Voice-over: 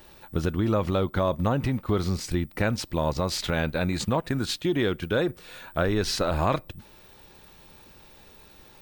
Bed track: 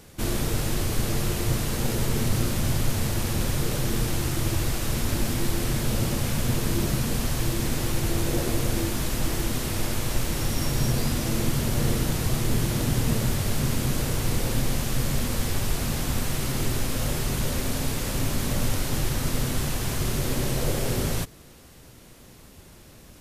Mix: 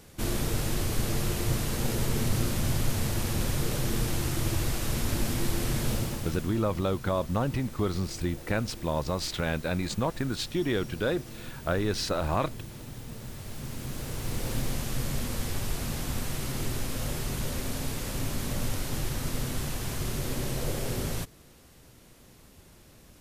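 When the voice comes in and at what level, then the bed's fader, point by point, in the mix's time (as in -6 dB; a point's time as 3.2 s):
5.90 s, -3.5 dB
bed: 5.91 s -3 dB
6.66 s -18 dB
13.1 s -18 dB
14.53 s -5.5 dB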